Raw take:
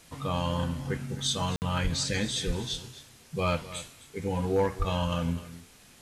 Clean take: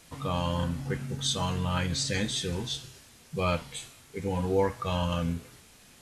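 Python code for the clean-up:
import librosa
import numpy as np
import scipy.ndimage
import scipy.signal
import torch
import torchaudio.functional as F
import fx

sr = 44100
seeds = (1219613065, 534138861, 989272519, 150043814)

y = fx.fix_declip(x, sr, threshold_db=-18.5)
y = fx.highpass(y, sr, hz=140.0, slope=24, at=(1.83, 1.95), fade=0.02)
y = fx.highpass(y, sr, hz=140.0, slope=24, at=(2.46, 2.58), fade=0.02)
y = fx.highpass(y, sr, hz=140.0, slope=24, at=(4.78, 4.9), fade=0.02)
y = fx.fix_interpolate(y, sr, at_s=(1.56,), length_ms=59.0)
y = fx.fix_echo_inverse(y, sr, delay_ms=257, level_db=-16.0)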